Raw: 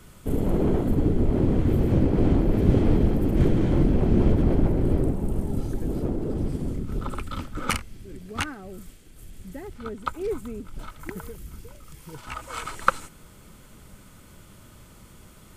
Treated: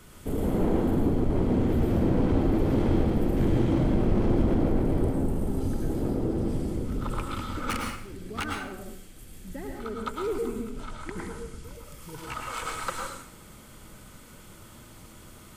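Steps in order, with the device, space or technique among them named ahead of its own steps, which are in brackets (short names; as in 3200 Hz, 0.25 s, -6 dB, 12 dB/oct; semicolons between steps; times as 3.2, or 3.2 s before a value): 10.7–11.64 LPF 9600 Hz 24 dB/oct; low shelf 230 Hz -4 dB; saturation between pre-emphasis and de-emphasis (high shelf 2900 Hz +11 dB; soft clip -21 dBFS, distortion -10 dB; high shelf 2900 Hz -11 dB); plate-style reverb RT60 0.62 s, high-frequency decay 0.9×, pre-delay 90 ms, DRR 1 dB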